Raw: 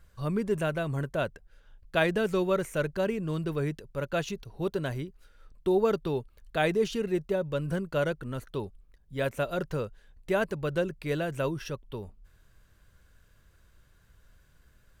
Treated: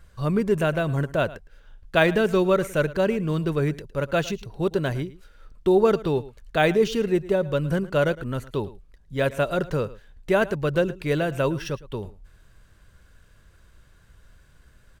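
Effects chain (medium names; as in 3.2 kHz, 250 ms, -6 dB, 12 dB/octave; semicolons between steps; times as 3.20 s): delay 110 ms -18.5 dB; decimation joined by straight lines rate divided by 2×; trim +6.5 dB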